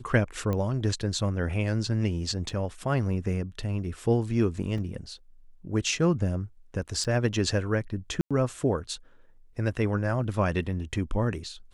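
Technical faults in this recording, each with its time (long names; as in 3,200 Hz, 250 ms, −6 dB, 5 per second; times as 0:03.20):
0:00.53: click −18 dBFS
0:02.49: drop-out 4.1 ms
0:04.78: drop-out 3.5 ms
0:07.04–0:07.05: drop-out 7.4 ms
0:08.21–0:08.31: drop-out 96 ms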